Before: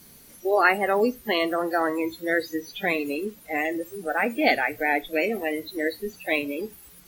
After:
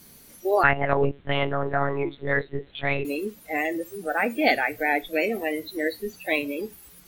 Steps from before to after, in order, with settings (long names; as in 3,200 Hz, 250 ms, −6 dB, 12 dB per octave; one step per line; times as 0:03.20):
0:00.63–0:03.05: one-pitch LPC vocoder at 8 kHz 140 Hz